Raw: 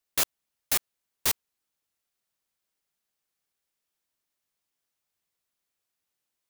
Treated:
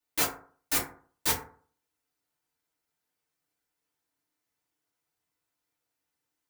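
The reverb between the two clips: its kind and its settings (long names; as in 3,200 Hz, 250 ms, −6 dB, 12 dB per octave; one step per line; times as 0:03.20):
feedback delay network reverb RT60 0.47 s, low-frequency decay 1×, high-frequency decay 0.4×, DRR −9 dB
level −7.5 dB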